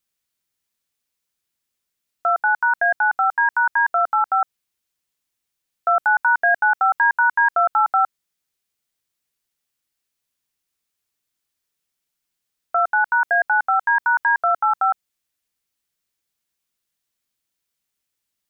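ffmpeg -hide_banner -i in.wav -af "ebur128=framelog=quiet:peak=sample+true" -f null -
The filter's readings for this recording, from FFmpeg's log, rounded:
Integrated loudness:
  I:         -18.5 LUFS
  Threshold: -28.5 LUFS
Loudness range:
  LRA:         8.3 LU
  Threshold: -40.9 LUFS
  LRA low:   -26.7 LUFS
  LRA high:  -18.3 LUFS
Sample peak:
  Peak:       -9.1 dBFS
True peak:
  Peak:       -9.1 dBFS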